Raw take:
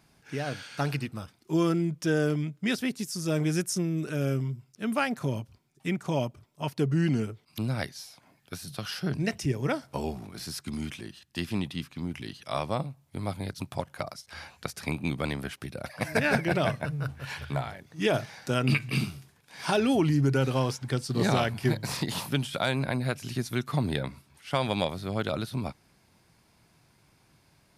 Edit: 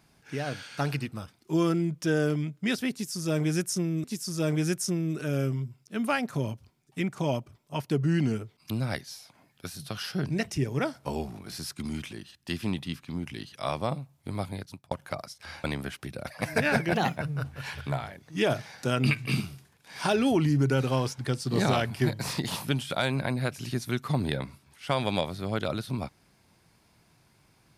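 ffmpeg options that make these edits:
-filter_complex "[0:a]asplit=6[a][b][c][d][e][f];[a]atrim=end=4.042[g];[b]atrim=start=2.918:end=13.79,asetpts=PTS-STARTPTS,afade=t=out:st=10.432:d=0.44[h];[c]atrim=start=13.79:end=14.522,asetpts=PTS-STARTPTS,afade=t=in:d=0.004:c=hsin[i];[d]atrim=start=15.228:end=16.534[j];[e]atrim=start=16.53:end=16.8,asetpts=PTS-STARTPTS,asetrate=53361,aresample=44100,atrim=end_sample=9840,asetpts=PTS-STARTPTS[k];[f]atrim=start=16.796[l];[h][i]concat=n=2:v=0:a=1[m];[g][m]acrossfade=d=0.004:c1=hsin:c2=hsin[n];[n][j]acrossfade=d=0.004:c1=hsin:c2=hsin[o];[o][k]acrossfade=d=0.004:c1=hsin:c2=hsin[p];[p][l]acrossfade=d=0.004:c1=hsin:c2=hsin"

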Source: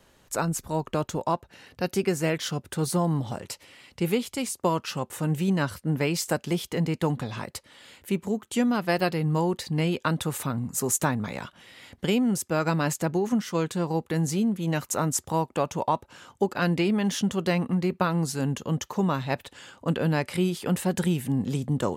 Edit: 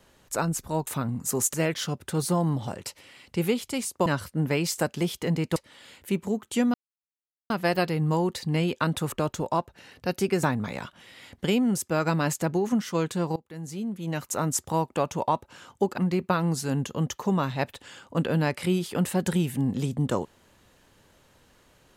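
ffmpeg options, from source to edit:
-filter_complex "[0:a]asplit=10[a][b][c][d][e][f][g][h][i][j];[a]atrim=end=0.872[k];[b]atrim=start=10.358:end=11.032[l];[c]atrim=start=2.178:end=4.702[m];[d]atrim=start=5.558:end=7.062[n];[e]atrim=start=7.558:end=8.74,asetpts=PTS-STARTPTS,afade=t=out:st=1.178:d=0.004:c=hsin,apad=pad_dur=0.76[o];[f]atrim=start=8.74:end=10.362,asetpts=PTS-STARTPTS,afade=t=in:d=0.004:c=hsin[p];[g]atrim=start=0.868:end=2.182[q];[h]atrim=start=11.028:end=13.96,asetpts=PTS-STARTPTS,afade=t=out:st=2.928:d=0.004:c=hsin:silence=0.0668344[r];[i]atrim=start=13.96:end=16.582,asetpts=PTS-STARTPTS,afade=t=in:d=1.23:silence=0.0668344[s];[j]atrim=start=17.688[t];[k][l]acrossfade=d=0.004:c1=hsin:c2=hsin[u];[u][m]acrossfade=d=0.004:c1=hsin:c2=hsin[v];[v][n]acrossfade=d=0.004:c1=hsin:c2=hsin[w];[o][p]concat=n=2:v=0:a=1[x];[w][x]acrossfade=d=0.004:c1=hsin:c2=hsin[y];[y][q]acrossfade=d=0.004:c1=hsin:c2=hsin[z];[r][s]concat=n=2:v=0:a=1[aa];[z][aa]acrossfade=d=0.004:c1=hsin:c2=hsin[ab];[ab][t]acrossfade=d=0.004:c1=hsin:c2=hsin"

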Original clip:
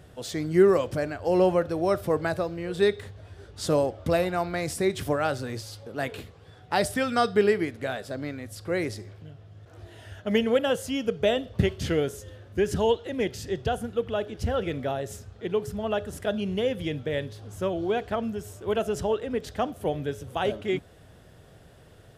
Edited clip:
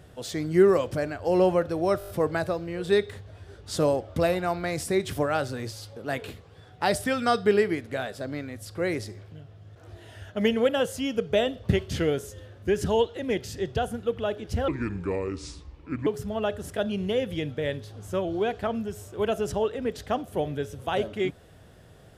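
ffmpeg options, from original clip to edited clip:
-filter_complex "[0:a]asplit=8[a][b][c][d][e][f][g][h];[a]atrim=end=2.012[i];[b]atrim=start=1.988:end=2.012[j];[c]atrim=start=1.988:end=2.012[k];[d]atrim=start=1.988:end=2.012[l];[e]atrim=start=1.988:end=2.012[m];[f]atrim=start=1.988:end=14.584[n];[g]atrim=start=14.58:end=15.55,asetpts=PTS-STARTPTS,asetrate=30870,aresample=44100,atrim=end_sample=61110,asetpts=PTS-STARTPTS[o];[h]atrim=start=15.546[p];[i][j]acrossfade=d=0.004:c1=hsin:c2=hsin[q];[q][k]acrossfade=d=0.004:c1=hsin:c2=hsin[r];[r][l]acrossfade=d=0.004:c1=hsin:c2=hsin[s];[s][m]acrossfade=d=0.004:c1=hsin:c2=hsin[t];[t][n]acrossfade=d=0.004:c1=hsin:c2=hsin[u];[u][o]acrossfade=d=0.004:c1=hsin:c2=hsin[v];[v][p]acrossfade=d=0.004:c1=hsin:c2=hsin"

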